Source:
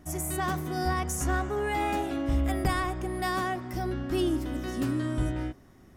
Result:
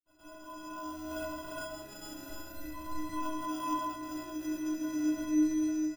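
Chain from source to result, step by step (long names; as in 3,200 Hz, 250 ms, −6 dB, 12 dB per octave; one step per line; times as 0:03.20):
fade in at the beginning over 1.92 s
0:00.93–0:03.04: low-shelf EQ 400 Hz +10.5 dB
downward compressor 6 to 1, threshold −30 dBFS, peak gain reduction 16.5 dB
high-shelf EQ 4,100 Hz +12 dB
double-tracking delay 23 ms −4 dB
reverb whose tail is shaped and stops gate 470 ms rising, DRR −5.5 dB
decimation without filtering 21×
stiff-string resonator 300 Hz, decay 0.75 s, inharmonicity 0.03
level +7.5 dB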